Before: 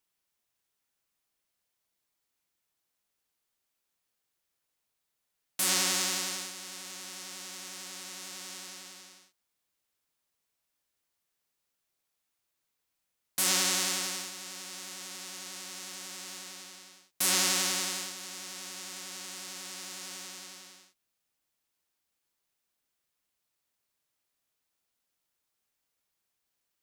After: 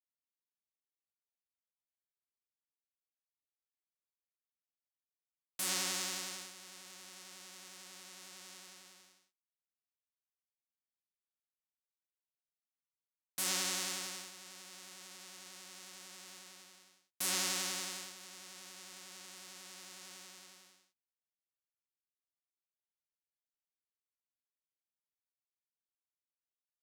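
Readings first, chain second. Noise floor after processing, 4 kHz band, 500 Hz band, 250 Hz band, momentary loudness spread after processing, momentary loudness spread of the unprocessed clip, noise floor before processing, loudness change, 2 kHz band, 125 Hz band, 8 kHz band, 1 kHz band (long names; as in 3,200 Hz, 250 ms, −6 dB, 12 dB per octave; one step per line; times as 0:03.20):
below −85 dBFS, −8.5 dB, −8.0 dB, −8.5 dB, 18 LU, 18 LU, −83 dBFS, −8.0 dB, −8.0 dB, −8.0 dB, −8.5 dB, −8.0 dB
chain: mu-law and A-law mismatch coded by A
level −7.5 dB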